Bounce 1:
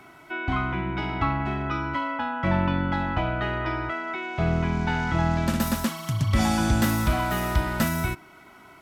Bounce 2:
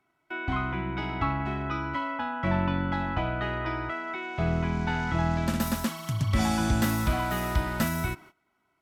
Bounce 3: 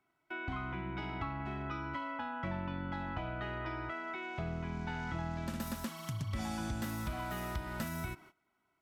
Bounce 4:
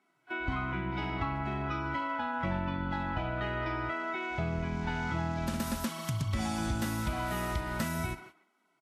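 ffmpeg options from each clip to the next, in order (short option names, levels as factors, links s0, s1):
-af "agate=range=0.0891:threshold=0.00562:ratio=16:detection=peak,volume=0.708"
-af "acompressor=threshold=0.0282:ratio=3,volume=0.531"
-filter_complex "[0:a]asplit=2[s0][s1];[s1]adelay=140,highpass=300,lowpass=3400,asoftclip=type=hard:threshold=0.0224,volume=0.224[s2];[s0][s2]amix=inputs=2:normalize=0,volume=1.88" -ar 32000 -c:a libvorbis -b:a 32k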